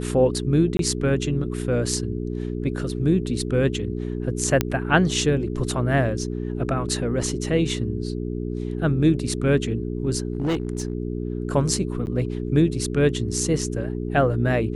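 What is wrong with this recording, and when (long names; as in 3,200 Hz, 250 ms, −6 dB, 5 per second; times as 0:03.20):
mains hum 60 Hz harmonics 7 −28 dBFS
0:00.77–0:00.79: drop-out 22 ms
0:04.61: click −5 dBFS
0:10.32–0:10.93: clipping −19.5 dBFS
0:12.06–0:12.07: drop-out 9.7 ms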